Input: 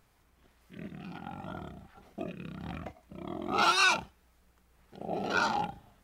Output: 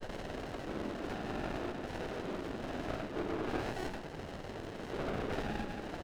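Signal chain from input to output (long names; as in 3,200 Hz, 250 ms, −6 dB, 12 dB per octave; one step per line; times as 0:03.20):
converter with a step at zero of −31.5 dBFS
high-pass filter 280 Hz 24 dB per octave
downward compressor 8 to 1, threshold −33 dBFS, peak gain reduction 14 dB
pitch-shifted copies added +4 semitones −2 dB
granular cloud 100 ms, grains 20 per second, pitch spread up and down by 0 semitones
on a send at −7.5 dB: convolution reverb RT60 0.55 s, pre-delay 5 ms
on the sum: downsampling to 8,000 Hz
windowed peak hold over 33 samples
level +1.5 dB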